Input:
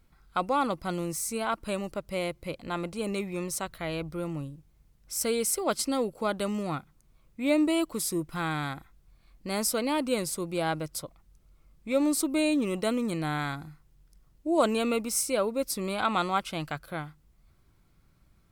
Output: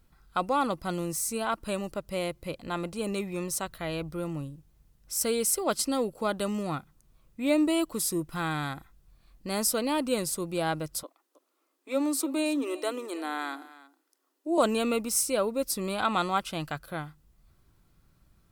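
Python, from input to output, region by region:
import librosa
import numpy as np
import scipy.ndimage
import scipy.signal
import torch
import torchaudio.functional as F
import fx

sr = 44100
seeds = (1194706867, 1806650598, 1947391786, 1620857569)

y = fx.chain(x, sr, fx.cheby_ripple_highpass(hz=260.0, ripple_db=3),
    fx.echo_single(ms=318, db=-18.0), at=(11.03, 14.58))
y = fx.high_shelf(y, sr, hz=8300.0, db=3.5)
y = fx.notch(y, sr, hz=2200.0, q=13.0)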